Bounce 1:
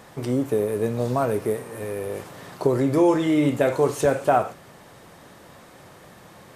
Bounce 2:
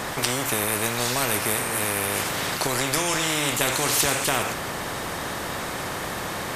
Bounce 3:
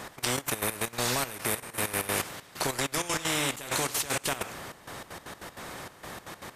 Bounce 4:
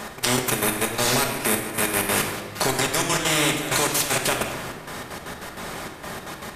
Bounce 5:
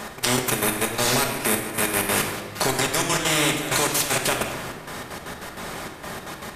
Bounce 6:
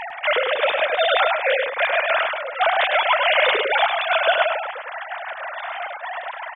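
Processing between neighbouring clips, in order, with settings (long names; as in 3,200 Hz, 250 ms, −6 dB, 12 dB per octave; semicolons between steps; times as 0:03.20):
every bin compressed towards the loudest bin 4 to 1; level +5 dB
output level in coarse steps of 13 dB; gate pattern "x..xx.x.x.x.xxx" 194 BPM −12 dB; level −2 dB
rectangular room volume 1,200 cubic metres, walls mixed, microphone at 1.3 metres; level +6 dB
no processing that can be heard
three sine waves on the formant tracks; on a send: single-tap delay 103 ms −5 dB; on the sum: level +2.5 dB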